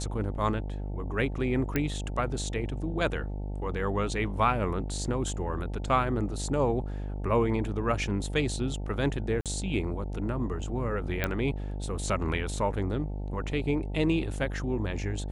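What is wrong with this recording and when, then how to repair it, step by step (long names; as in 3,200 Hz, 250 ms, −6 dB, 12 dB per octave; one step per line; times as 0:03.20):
mains buzz 50 Hz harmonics 18 −34 dBFS
0:01.76: click −13 dBFS
0:09.41–0:09.46: drop-out 47 ms
0:11.24: click −13 dBFS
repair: click removal
hum removal 50 Hz, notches 18
repair the gap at 0:09.41, 47 ms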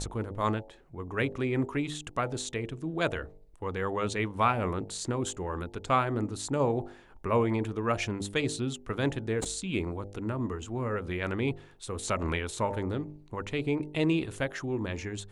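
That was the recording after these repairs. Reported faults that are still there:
none of them is left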